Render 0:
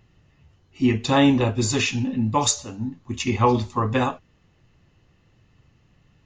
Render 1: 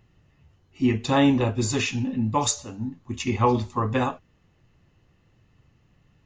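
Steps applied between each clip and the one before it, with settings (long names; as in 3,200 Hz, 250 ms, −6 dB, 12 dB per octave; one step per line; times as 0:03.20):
parametric band 4,300 Hz −2.5 dB 1.6 octaves
level −2 dB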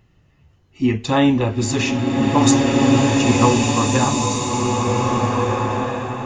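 slow-attack reverb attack 1,860 ms, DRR −3 dB
level +3.5 dB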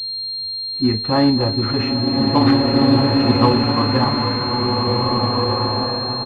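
single-tap delay 268 ms −16 dB
switching amplifier with a slow clock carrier 4,200 Hz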